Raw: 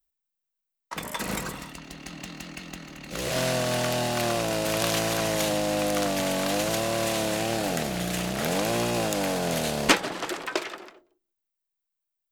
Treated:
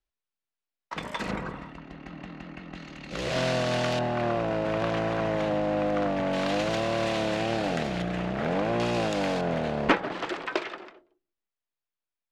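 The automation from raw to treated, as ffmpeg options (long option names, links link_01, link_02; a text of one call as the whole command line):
ffmpeg -i in.wav -af "asetnsamples=nb_out_samples=441:pad=0,asendcmd='1.31 lowpass f 1800;2.75 lowpass f 4400;3.99 lowpass f 1800;6.33 lowpass f 3600;8.02 lowpass f 2000;8.8 lowpass f 4000;9.41 lowpass f 1900;10.1 lowpass f 3500',lowpass=4000" out.wav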